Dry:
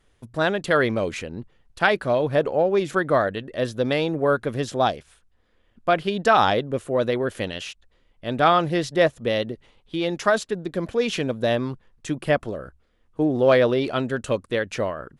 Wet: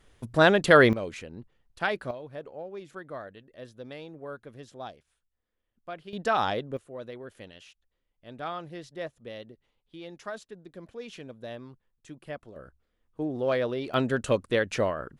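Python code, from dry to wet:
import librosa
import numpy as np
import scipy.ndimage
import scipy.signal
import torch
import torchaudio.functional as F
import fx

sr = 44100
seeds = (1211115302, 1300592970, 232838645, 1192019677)

y = fx.gain(x, sr, db=fx.steps((0.0, 3.0), (0.93, -9.0), (2.11, -19.5), (6.13, -8.5), (6.77, -18.0), (12.56, -10.0), (13.94, -1.0)))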